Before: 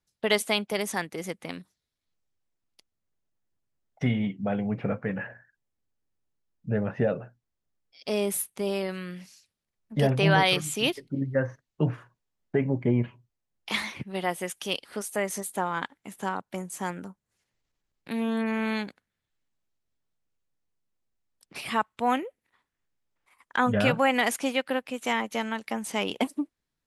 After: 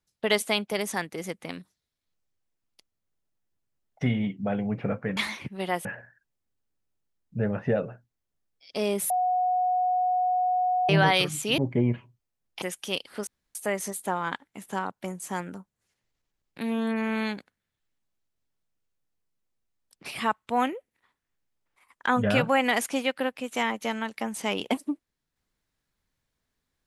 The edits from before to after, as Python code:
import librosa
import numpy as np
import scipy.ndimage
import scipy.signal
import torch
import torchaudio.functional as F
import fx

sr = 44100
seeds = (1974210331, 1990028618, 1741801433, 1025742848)

y = fx.edit(x, sr, fx.bleep(start_s=8.42, length_s=1.79, hz=731.0, db=-21.5),
    fx.cut(start_s=10.9, length_s=1.78),
    fx.move(start_s=13.72, length_s=0.68, to_s=5.17),
    fx.insert_room_tone(at_s=15.05, length_s=0.28), tone=tone)